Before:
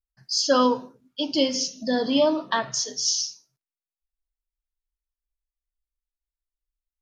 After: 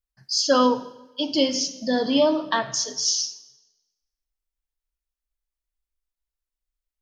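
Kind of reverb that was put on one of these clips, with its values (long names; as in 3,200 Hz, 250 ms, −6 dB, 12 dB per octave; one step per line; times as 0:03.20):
comb and all-pass reverb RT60 1.1 s, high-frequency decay 0.95×, pre-delay 15 ms, DRR 16.5 dB
level +1 dB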